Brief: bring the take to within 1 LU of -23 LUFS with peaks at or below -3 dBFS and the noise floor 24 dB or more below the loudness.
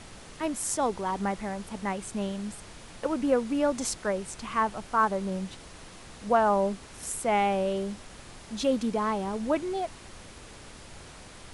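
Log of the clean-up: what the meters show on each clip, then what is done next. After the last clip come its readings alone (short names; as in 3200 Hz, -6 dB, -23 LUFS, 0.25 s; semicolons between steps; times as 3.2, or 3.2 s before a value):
noise floor -48 dBFS; noise floor target -53 dBFS; loudness -29.0 LUFS; peak -11.5 dBFS; loudness target -23.0 LUFS
-> noise print and reduce 6 dB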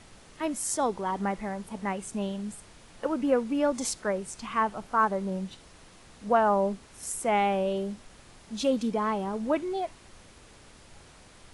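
noise floor -53 dBFS; loudness -29.0 LUFS; peak -12.0 dBFS; loudness target -23.0 LUFS
-> gain +6 dB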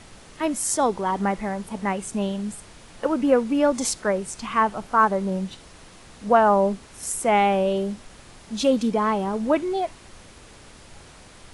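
loudness -23.0 LUFS; peak -6.0 dBFS; noise floor -47 dBFS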